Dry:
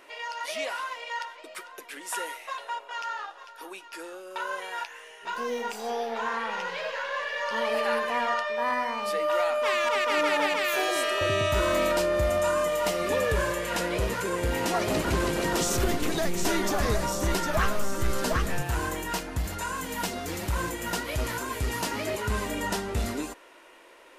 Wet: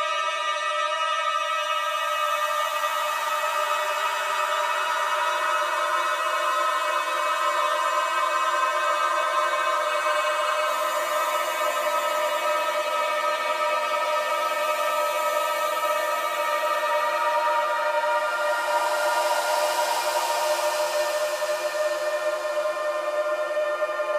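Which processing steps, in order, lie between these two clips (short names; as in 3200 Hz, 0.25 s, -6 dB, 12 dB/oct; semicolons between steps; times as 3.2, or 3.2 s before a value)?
LFO high-pass saw down 0.29 Hz 400–1700 Hz; Paulstretch 37×, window 0.10 s, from 11.45; spectral freeze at 9.87, 0.79 s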